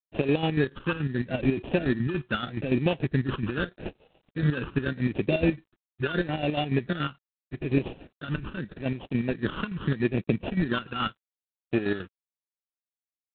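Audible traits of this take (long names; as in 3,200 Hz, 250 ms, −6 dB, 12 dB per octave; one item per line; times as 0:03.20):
aliases and images of a low sample rate 2,100 Hz, jitter 0%
chopped level 7 Hz, depth 60%, duty 50%
phaser sweep stages 12, 0.8 Hz, lowest notch 650–1,400 Hz
G.726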